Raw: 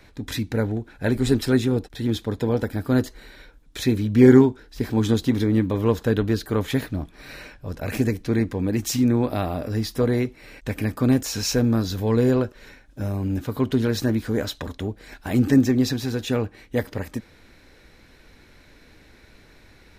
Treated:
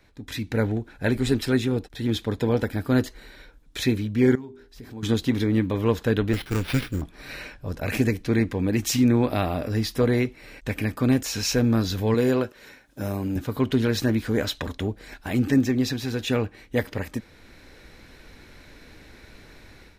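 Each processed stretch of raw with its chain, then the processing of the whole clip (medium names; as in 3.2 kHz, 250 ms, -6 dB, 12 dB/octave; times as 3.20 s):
4.35–5.03 s: hum notches 50/100/150/200/250/300/350/400 Hz + compression 2.5:1, threshold -36 dBFS
6.33–7.02 s: comb filter that takes the minimum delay 0.78 ms + high-order bell 800 Hz -13 dB 1.1 oct + sample-rate reducer 7.2 kHz
12.14–13.36 s: high-pass 200 Hz 6 dB/octave + treble shelf 12 kHz +8.5 dB
whole clip: dynamic bell 2.5 kHz, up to +5 dB, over -44 dBFS, Q 1.1; level rider; trim -8 dB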